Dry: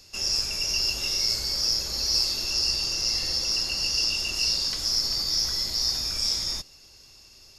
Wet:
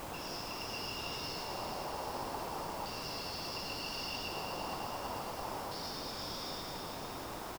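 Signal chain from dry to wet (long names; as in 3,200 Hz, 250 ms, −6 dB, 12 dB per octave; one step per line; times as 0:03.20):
on a send: echo with shifted repeats 83 ms, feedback 36%, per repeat +100 Hz, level −9 dB
on the sum: auto-filter band-pass square 0.35 Hz 870–3,300 Hz
high-pass filter 220 Hz
high-shelf EQ 9,700 Hz −6 dB
in parallel at +2 dB: downward compressor, threshold −50 dBFS, peak gain reduction 19 dB
on the sum: delay with a high-pass on its return 113 ms, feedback 84%, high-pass 2,100 Hz, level −6 dB
bit-depth reduction 6 bits, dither triangular
drawn EQ curve 1,000 Hz 0 dB, 1,800 Hz −13 dB, 9,900 Hz −22 dB
level +4.5 dB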